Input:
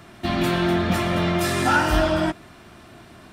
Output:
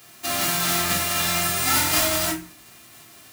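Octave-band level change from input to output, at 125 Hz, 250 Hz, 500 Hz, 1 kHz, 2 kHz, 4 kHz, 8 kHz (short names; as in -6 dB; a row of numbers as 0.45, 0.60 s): -8.0, -9.5, -7.0, -3.0, -1.0, +5.5, +13.5 dB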